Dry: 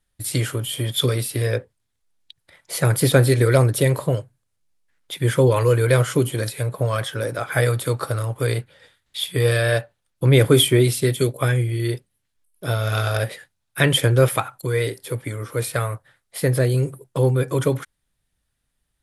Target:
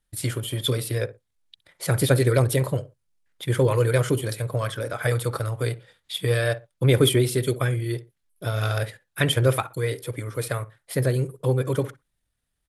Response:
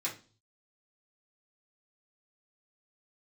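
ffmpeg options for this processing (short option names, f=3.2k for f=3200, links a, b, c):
-filter_complex "[0:a]asplit=2[a][b];[b]adelay=92,lowpass=f=1.5k:p=1,volume=-15dB,asplit=2[c][d];[d]adelay=92,lowpass=f=1.5k:p=1,volume=0.23[e];[a][c][e]amix=inputs=3:normalize=0,atempo=1.5,volume=-3.5dB"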